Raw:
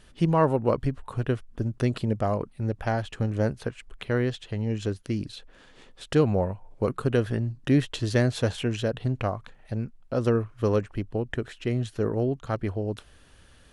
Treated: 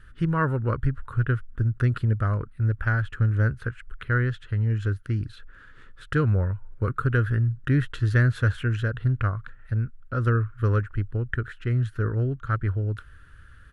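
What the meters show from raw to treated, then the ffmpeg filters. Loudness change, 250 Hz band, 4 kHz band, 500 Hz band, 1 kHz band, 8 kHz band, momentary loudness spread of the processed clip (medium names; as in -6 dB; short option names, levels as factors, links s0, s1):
+2.0 dB, -3.5 dB, no reading, -7.0 dB, -0.5 dB, under -10 dB, 7 LU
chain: -af "firequalizer=gain_entry='entry(110,0);entry(190,-12);entry(310,-12);entry(480,-14);entry(740,-23);entry(1400,4);entry(2300,-12);entry(5600,-20);entry(12000,-14)':delay=0.05:min_phase=1,volume=2.37"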